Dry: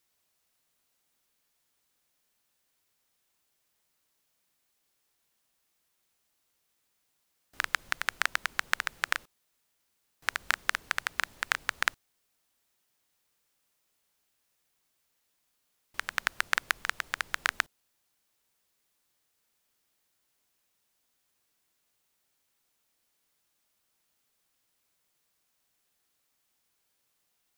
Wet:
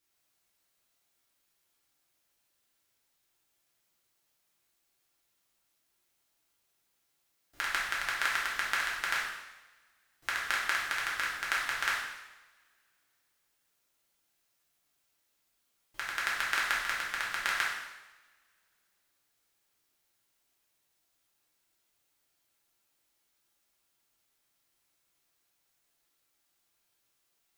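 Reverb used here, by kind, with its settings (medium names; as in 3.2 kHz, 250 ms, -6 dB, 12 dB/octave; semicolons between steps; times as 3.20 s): two-slope reverb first 0.97 s, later 2.8 s, from -27 dB, DRR -6 dB; trim -7 dB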